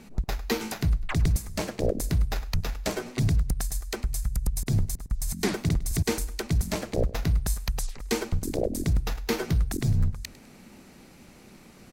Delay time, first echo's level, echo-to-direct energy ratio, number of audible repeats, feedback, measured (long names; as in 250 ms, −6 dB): 102 ms, −19.0 dB, −18.5 dB, 2, 38%